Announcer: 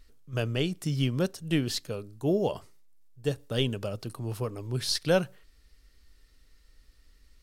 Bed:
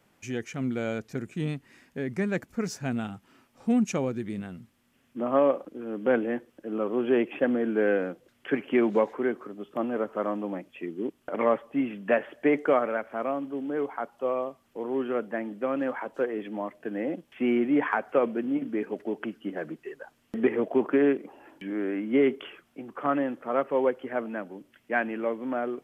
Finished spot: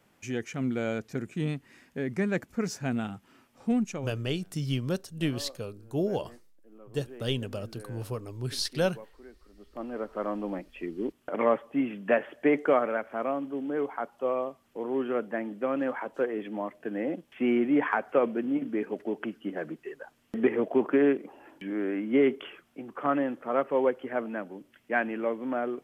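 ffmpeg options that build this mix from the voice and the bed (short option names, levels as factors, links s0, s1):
-filter_complex "[0:a]adelay=3700,volume=0.75[s0];[1:a]volume=13.3,afade=t=out:st=3.56:d=0.64:silence=0.0707946,afade=t=in:st=9.44:d=1.08:silence=0.0749894[s1];[s0][s1]amix=inputs=2:normalize=0"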